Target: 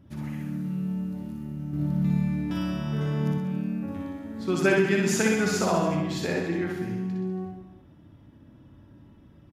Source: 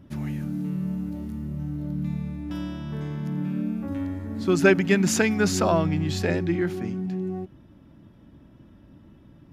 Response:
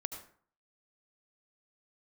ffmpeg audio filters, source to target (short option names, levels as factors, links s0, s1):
-filter_complex "[0:a]asettb=1/sr,asplit=3[s0][s1][s2];[s0]atrim=end=1.734[s3];[s1]atrim=start=1.73:end=3.32,asetpts=PTS-STARTPTS,afade=t=in:d=0.004:c=qsin,afade=t=out:st=1.586:d=0.004:c=qsin,acontrast=82[s4];[s2]atrim=start=3.316[s5];[s3][s4]acrossfade=d=0.004:c1=hsin:c2=qsin[s6];[s6][s5]acrossfade=d=0.004:c1=qsin:c2=hsin,aecho=1:1:60|126|198.6|278.5|366.3:0.631|0.398|0.251|0.158|0.1[s7];[1:a]atrim=start_sample=2205,asetrate=66150,aresample=44100[s8];[s7][s8]afir=irnorm=-1:irlink=0"